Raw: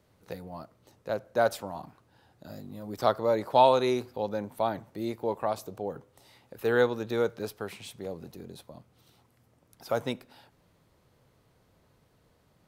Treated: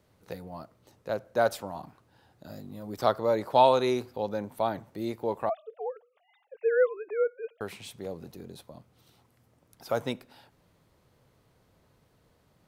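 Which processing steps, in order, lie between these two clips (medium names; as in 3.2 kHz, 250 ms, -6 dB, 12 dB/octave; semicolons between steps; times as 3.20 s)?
5.49–7.61 s: formants replaced by sine waves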